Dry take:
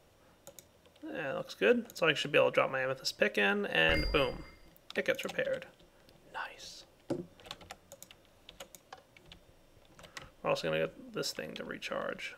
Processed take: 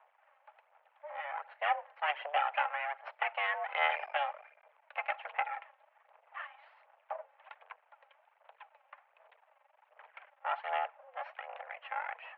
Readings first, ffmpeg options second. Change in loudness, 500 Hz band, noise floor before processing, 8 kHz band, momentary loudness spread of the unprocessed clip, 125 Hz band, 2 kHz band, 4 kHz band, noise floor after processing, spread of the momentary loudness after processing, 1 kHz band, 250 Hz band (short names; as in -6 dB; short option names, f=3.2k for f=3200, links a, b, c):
-3.5 dB, -11.0 dB, -64 dBFS, under -30 dB, 22 LU, under -40 dB, -3.0 dB, -9.0 dB, -72 dBFS, 21 LU, +6.0 dB, under -40 dB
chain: -af "aeval=exprs='max(val(0),0)':c=same,aphaser=in_gain=1:out_gain=1:delay=3.9:decay=0.45:speed=1.3:type=sinusoidal,highpass=f=280:t=q:w=0.5412,highpass=f=280:t=q:w=1.307,lowpass=f=2.3k:t=q:w=0.5176,lowpass=f=2.3k:t=q:w=0.7071,lowpass=f=2.3k:t=q:w=1.932,afreqshift=290,volume=1dB"